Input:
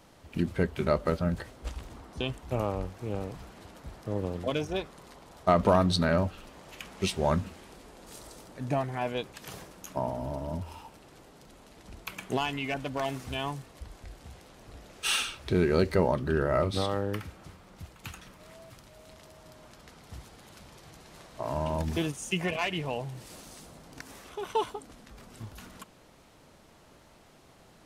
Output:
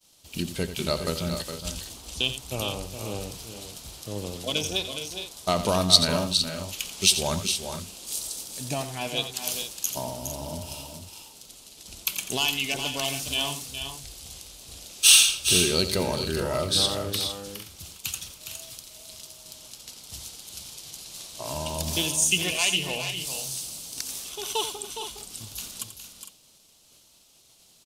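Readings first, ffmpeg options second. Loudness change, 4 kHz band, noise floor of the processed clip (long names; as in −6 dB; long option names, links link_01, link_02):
+5.0 dB, +14.5 dB, −58 dBFS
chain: -af "agate=range=-33dB:threshold=-49dB:ratio=3:detection=peak,aecho=1:1:87|413|457:0.266|0.376|0.251,aexciter=amount=6.5:drive=6.8:freq=2700,volume=-2.5dB"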